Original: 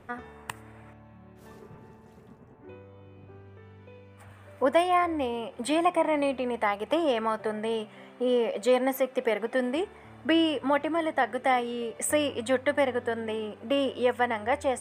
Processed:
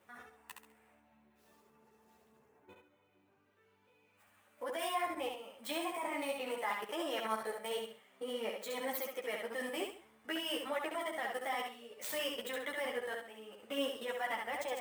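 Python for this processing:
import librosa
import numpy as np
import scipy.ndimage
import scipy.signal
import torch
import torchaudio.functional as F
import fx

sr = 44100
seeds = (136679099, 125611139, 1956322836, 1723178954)

p1 = scipy.ndimage.median_filter(x, 5, mode='constant')
p2 = fx.level_steps(p1, sr, step_db=15)
p3 = fx.riaa(p2, sr, side='recording')
p4 = p3 + fx.echo_feedback(p3, sr, ms=68, feedback_pct=31, wet_db=-4.0, dry=0)
p5 = fx.ensemble(p4, sr)
y = p5 * librosa.db_to_amplitude(-3.0)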